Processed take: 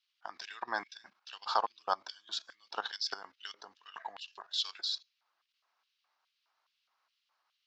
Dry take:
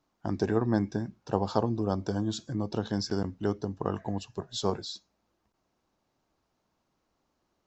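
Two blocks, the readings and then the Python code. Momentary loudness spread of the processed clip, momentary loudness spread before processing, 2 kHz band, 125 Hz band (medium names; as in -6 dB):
16 LU, 8 LU, +3.0 dB, under -40 dB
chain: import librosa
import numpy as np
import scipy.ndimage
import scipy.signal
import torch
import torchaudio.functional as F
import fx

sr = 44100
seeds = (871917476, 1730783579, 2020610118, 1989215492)

y = fx.level_steps(x, sr, step_db=14)
y = fx.filter_lfo_highpass(y, sr, shape='square', hz=2.4, low_hz=790.0, high_hz=3000.0, q=2.3)
y = fx.band_shelf(y, sr, hz=2400.0, db=13.0, octaves=2.6)
y = y * librosa.db_to_amplitude(-4.5)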